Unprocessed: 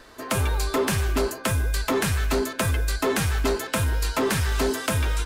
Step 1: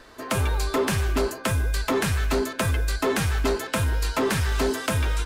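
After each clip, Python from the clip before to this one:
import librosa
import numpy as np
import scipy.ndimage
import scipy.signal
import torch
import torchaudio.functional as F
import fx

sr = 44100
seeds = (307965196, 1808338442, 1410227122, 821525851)

y = fx.high_shelf(x, sr, hz=7300.0, db=-4.0)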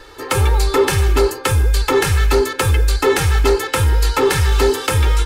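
y = x + 0.88 * np.pad(x, (int(2.3 * sr / 1000.0), 0))[:len(x)]
y = F.gain(torch.from_numpy(y), 5.5).numpy()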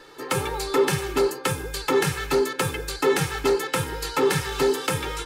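y = fx.low_shelf_res(x, sr, hz=110.0, db=-12.0, q=3.0)
y = F.gain(torch.from_numpy(y), -6.5).numpy()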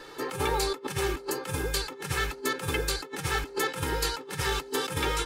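y = fx.over_compress(x, sr, threshold_db=-28.0, ratio=-0.5)
y = F.gain(torch.from_numpy(y), -2.0).numpy()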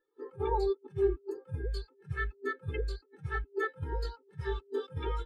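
y = fx.spectral_expand(x, sr, expansion=2.5)
y = F.gain(torch.from_numpy(y), -3.0).numpy()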